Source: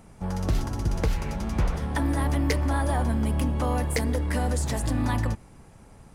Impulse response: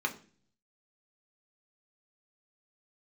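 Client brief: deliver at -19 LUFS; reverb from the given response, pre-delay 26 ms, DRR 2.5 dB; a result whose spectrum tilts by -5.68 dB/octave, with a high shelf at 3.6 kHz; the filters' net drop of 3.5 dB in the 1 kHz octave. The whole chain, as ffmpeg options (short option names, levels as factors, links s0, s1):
-filter_complex "[0:a]equalizer=f=1000:t=o:g=-5,highshelf=f=3600:g=4.5,asplit=2[s0][s1];[1:a]atrim=start_sample=2205,adelay=26[s2];[s1][s2]afir=irnorm=-1:irlink=0,volume=0.355[s3];[s0][s3]amix=inputs=2:normalize=0,volume=2.11"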